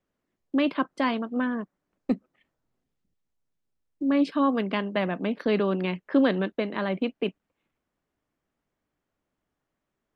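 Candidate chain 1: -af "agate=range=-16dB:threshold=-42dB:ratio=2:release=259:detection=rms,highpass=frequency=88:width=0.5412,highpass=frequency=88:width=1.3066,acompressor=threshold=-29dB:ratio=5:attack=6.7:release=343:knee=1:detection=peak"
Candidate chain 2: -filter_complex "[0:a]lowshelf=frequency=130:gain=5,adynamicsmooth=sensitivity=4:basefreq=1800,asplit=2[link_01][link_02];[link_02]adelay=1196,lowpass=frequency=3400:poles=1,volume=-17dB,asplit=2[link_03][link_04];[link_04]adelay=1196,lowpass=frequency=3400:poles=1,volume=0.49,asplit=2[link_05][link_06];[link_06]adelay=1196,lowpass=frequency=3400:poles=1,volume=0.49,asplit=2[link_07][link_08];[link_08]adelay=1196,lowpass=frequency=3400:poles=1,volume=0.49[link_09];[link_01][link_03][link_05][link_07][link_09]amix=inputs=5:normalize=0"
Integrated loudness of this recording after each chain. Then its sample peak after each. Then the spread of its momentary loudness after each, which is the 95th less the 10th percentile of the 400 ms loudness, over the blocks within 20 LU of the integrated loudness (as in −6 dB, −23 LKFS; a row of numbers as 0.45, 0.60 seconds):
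−35.0, −26.5 LKFS; −16.5, −11.0 dBFS; 6, 21 LU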